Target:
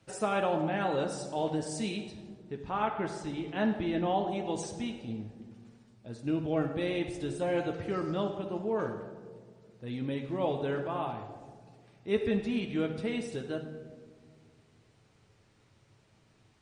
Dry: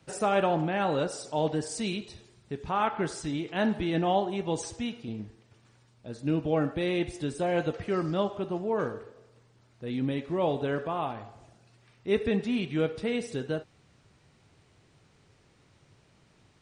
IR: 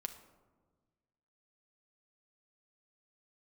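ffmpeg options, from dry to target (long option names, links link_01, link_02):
-filter_complex "[0:a]asettb=1/sr,asplit=3[link_01][link_02][link_03];[link_01]atrim=end=2.104[link_04];[link_02]atrim=start=2.1:end=4.27,asetpts=PTS-STARTPTS,afade=type=in:duration=0.004:curve=qsin,afade=type=out:start_time=2.166:duration=0.004:curve=qsin,highshelf=frequency=6800:gain=-11.5[link_05];[link_03]atrim=start=4.266[link_06];[link_04][link_05]acrossfade=duration=0.004:curve1=hsin:curve2=qsin[link_07];[link_07][link_06]acrossfade=duration=0.004:curve1=qsin:curve2=hsin[link_08];[1:a]atrim=start_sample=2205,asetrate=28665,aresample=44100[link_09];[link_08][link_09]afir=irnorm=-1:irlink=0,volume=-3.5dB"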